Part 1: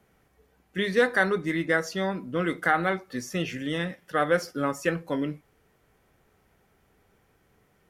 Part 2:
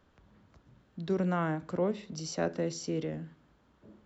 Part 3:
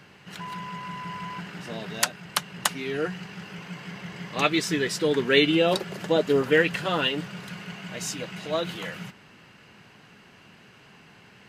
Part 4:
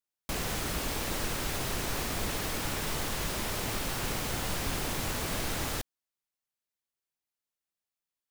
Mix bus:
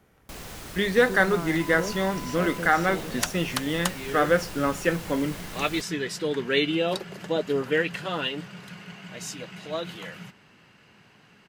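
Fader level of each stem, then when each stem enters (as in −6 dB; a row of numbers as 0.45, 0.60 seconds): +2.0, −3.5, −4.0, −7.0 decibels; 0.00, 0.00, 1.20, 0.00 seconds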